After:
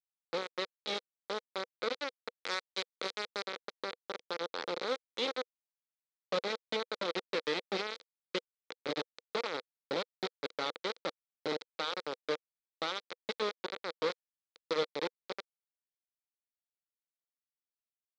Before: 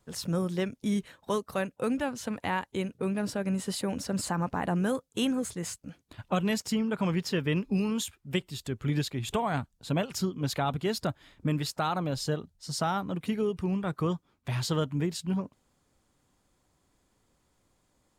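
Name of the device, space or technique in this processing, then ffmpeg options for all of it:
hand-held game console: -filter_complex "[0:a]acrusher=bits=3:mix=0:aa=0.000001,highpass=440,equalizer=frequency=490:width_type=q:width=4:gain=8,equalizer=frequency=710:width_type=q:width=4:gain=-9,equalizer=frequency=1000:width_type=q:width=4:gain=-7,equalizer=frequency=1700:width_type=q:width=4:gain=-6,equalizer=frequency=2800:width_type=q:width=4:gain=-9,equalizer=frequency=4000:width_type=q:width=4:gain=5,lowpass=frequency=4400:width=0.5412,lowpass=frequency=4400:width=1.3066,asettb=1/sr,asplit=3[link_01][link_02][link_03];[link_01]atrim=end=2.304[link_04];[link_02]atrim=start=2.3:end=3.43,asetpts=PTS-STARTPTS,afade=type=in:duration=0.004:curve=qsin,afade=type=out:start_time=1.126:duration=0.004:curve=qsin,aemphasis=mode=production:type=50kf[link_05];[link_03]atrim=start=3.426[link_06];[link_04][link_05]acrossfade=duration=0.004:curve1=hsin:curve2=qsin[link_07];[link_07][link_06]acrossfade=duration=0.004:curve1=qsin:curve2=hsin,volume=-3.5dB"

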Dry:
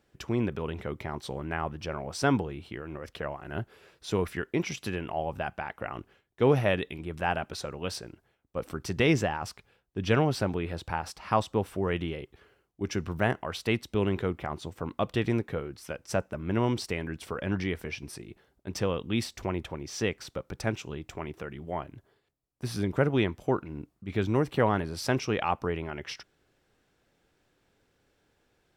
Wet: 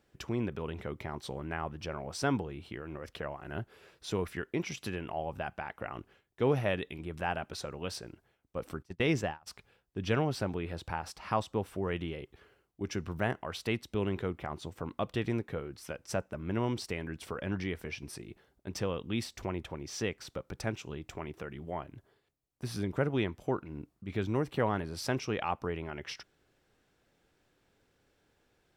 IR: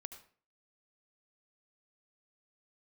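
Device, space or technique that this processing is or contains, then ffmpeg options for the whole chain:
parallel compression: -filter_complex "[0:a]asplit=2[link_01][link_02];[link_02]acompressor=threshold=-38dB:ratio=16,volume=-3dB[link_03];[link_01][link_03]amix=inputs=2:normalize=0,asplit=3[link_04][link_05][link_06];[link_04]afade=type=out:start_time=8.82:duration=0.02[link_07];[link_05]agate=range=-29dB:threshold=-27dB:ratio=16:detection=peak,afade=type=in:start_time=8.82:duration=0.02,afade=type=out:start_time=9.46:duration=0.02[link_08];[link_06]afade=type=in:start_time=9.46:duration=0.02[link_09];[link_07][link_08][link_09]amix=inputs=3:normalize=0,volume=-6dB"

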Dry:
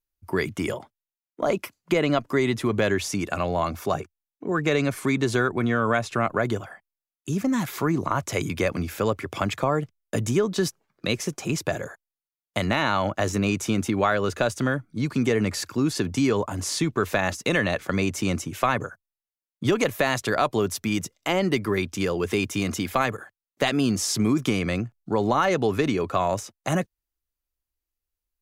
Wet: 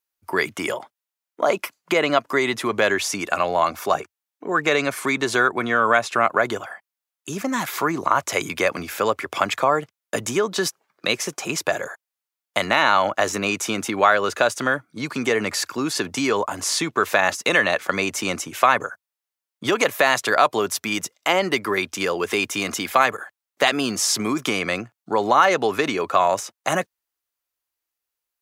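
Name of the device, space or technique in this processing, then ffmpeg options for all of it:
filter by subtraction: -filter_complex "[0:a]asplit=2[link_01][link_02];[link_02]lowpass=970,volume=-1[link_03];[link_01][link_03]amix=inputs=2:normalize=0,volume=5.5dB"

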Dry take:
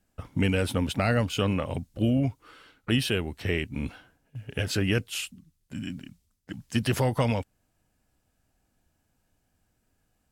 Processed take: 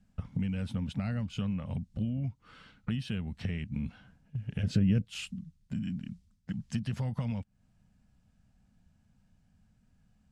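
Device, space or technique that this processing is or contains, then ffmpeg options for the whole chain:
jukebox: -filter_complex "[0:a]lowpass=6800,lowshelf=frequency=260:width_type=q:width=3:gain=8,acompressor=threshold=-31dB:ratio=4,asettb=1/sr,asplit=3[link_01][link_02][link_03];[link_01]atrim=end=4.634[link_04];[link_02]atrim=start=4.63:end=5.05,asetpts=PTS-STARTPTS,afade=type=in:duration=0.004:curve=qsin,afade=type=out:start_time=0.416:duration=0.004:curve=qsin,lowshelf=frequency=680:width_type=q:width=1.5:gain=7[link_05];[link_03]atrim=start=5.046[link_06];[link_04][link_05]acrossfade=duration=0.004:curve1=hsin:curve2=qsin[link_07];[link_07][link_06]acrossfade=duration=0.004:curve1=qsin:curve2=hsin,volume=-2dB"

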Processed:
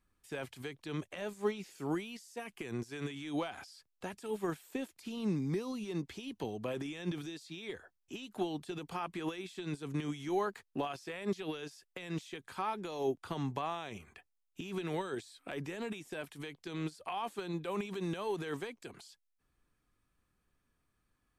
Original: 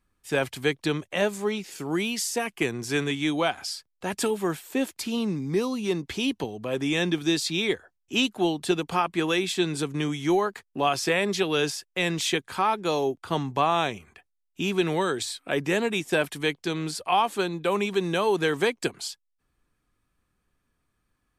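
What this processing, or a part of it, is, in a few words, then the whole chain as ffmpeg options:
de-esser from a sidechain: -filter_complex "[0:a]asplit=2[link_01][link_02];[link_02]highpass=5800,apad=whole_len=943158[link_03];[link_01][link_03]sidechaincompress=threshold=-53dB:ratio=8:attack=2.1:release=41,volume=-4dB"

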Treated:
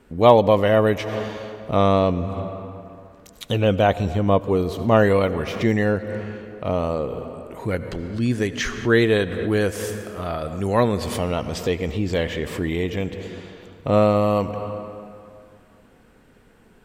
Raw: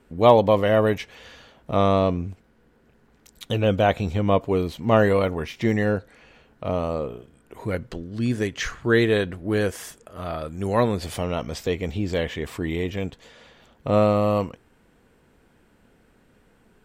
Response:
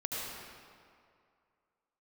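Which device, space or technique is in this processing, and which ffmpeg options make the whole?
ducked reverb: -filter_complex "[0:a]asettb=1/sr,asplit=3[link_01][link_02][link_03];[link_01]atrim=end=3.874[link_04];[link_02]atrim=start=3.87:end=4.95,asetpts=PTS-STARTPTS,afade=type=in:duration=0.004:curve=qsin,afade=type=out:start_time=1.076:duration=0.004:curve=qsin,equalizer=frequency=2400:width_type=o:width=0.89:gain=-5.5[link_05];[link_03]atrim=start=4.946[link_06];[link_04][link_05]acrossfade=duration=0.004:curve1=hsin:curve2=qsin[link_07];[link_07][link_06]acrossfade=duration=0.004:curve1=qsin:curve2=hsin,asplit=3[link_08][link_09][link_10];[1:a]atrim=start_sample=2205[link_11];[link_09][link_11]afir=irnorm=-1:irlink=0[link_12];[link_10]apad=whole_len=742786[link_13];[link_12][link_13]sidechaincompress=threshold=-32dB:ratio=8:attack=16:release=194,volume=-8dB[link_14];[link_08][link_14]amix=inputs=2:normalize=0,volume=1.5dB"

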